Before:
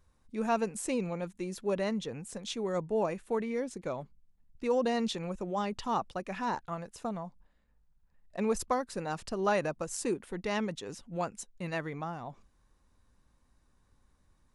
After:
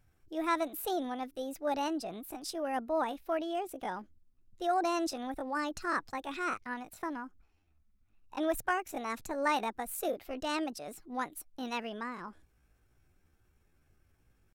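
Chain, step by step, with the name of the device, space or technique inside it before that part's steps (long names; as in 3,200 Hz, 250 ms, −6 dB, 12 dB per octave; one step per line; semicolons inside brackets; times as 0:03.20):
chipmunk voice (pitch shifter +6.5 semitones)
level −1.5 dB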